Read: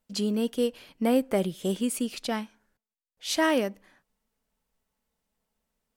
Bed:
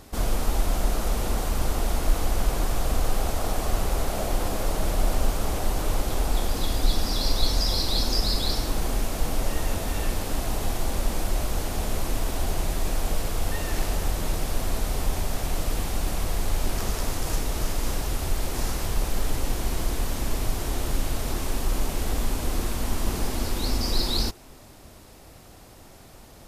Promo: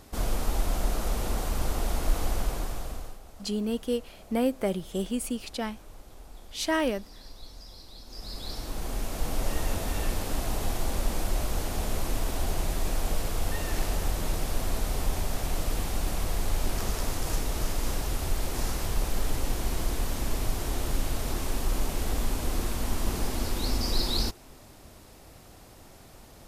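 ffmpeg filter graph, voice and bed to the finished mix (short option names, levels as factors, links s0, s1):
-filter_complex "[0:a]adelay=3300,volume=0.75[s0];[1:a]volume=7.08,afade=t=out:st=2.29:d=0.9:silence=0.105925,afade=t=in:st=8.06:d=1.46:silence=0.0944061[s1];[s0][s1]amix=inputs=2:normalize=0"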